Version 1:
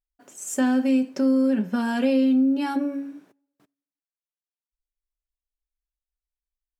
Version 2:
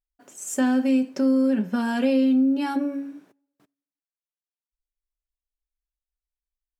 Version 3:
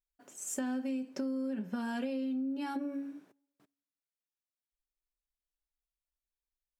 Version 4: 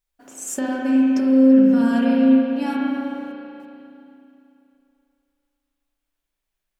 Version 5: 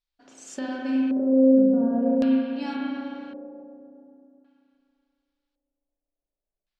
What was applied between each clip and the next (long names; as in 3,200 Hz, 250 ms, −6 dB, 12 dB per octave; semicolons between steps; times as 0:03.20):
no processing that can be heard
downward compressor, threshold −27 dBFS, peak gain reduction 10 dB; level −6 dB
spring reverb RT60 2.8 s, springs 34/53 ms, chirp 65 ms, DRR −4 dB; level +9 dB
auto-filter low-pass square 0.45 Hz 580–4,400 Hz; level −7 dB